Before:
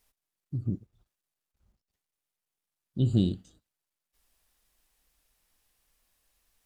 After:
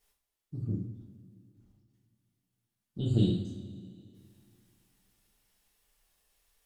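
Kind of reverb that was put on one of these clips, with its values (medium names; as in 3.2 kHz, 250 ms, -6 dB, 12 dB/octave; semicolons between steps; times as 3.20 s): two-slope reverb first 0.43 s, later 2.6 s, from -18 dB, DRR -5.5 dB; trim -6 dB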